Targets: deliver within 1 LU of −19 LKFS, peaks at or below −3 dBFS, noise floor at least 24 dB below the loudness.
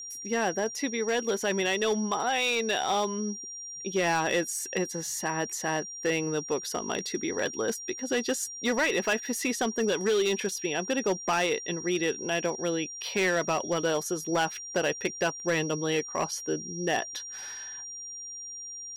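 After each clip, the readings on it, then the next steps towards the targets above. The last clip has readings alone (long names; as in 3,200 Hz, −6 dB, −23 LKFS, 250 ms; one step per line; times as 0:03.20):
share of clipped samples 1.1%; peaks flattened at −20.5 dBFS; interfering tone 5,700 Hz; level of the tone −38 dBFS; integrated loudness −29.0 LKFS; sample peak −20.5 dBFS; target loudness −19.0 LKFS
→ clipped peaks rebuilt −20.5 dBFS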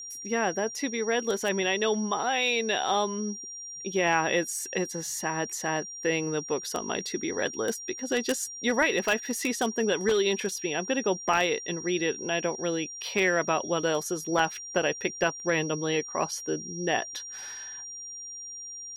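share of clipped samples 0.0%; interfering tone 5,700 Hz; level of the tone −38 dBFS
→ notch filter 5,700 Hz, Q 30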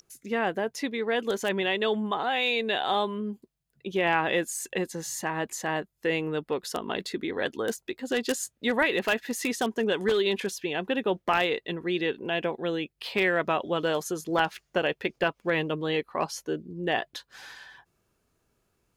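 interfering tone none found; integrated loudness −28.5 LKFS; sample peak −11.5 dBFS; target loudness −19.0 LKFS
→ level +9.5 dB
brickwall limiter −3 dBFS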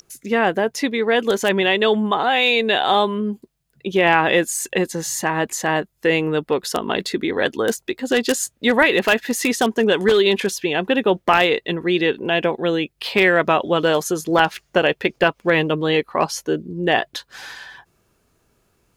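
integrated loudness −19.0 LKFS; sample peak −3.0 dBFS; background noise floor −66 dBFS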